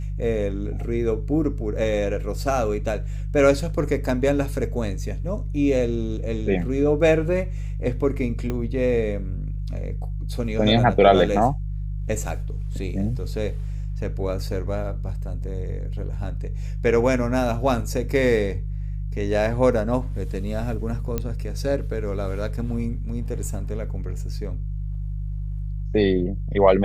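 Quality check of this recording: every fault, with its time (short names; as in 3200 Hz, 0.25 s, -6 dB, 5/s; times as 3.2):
hum 50 Hz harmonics 3 -28 dBFS
8.5 pop -15 dBFS
21.18 pop -12 dBFS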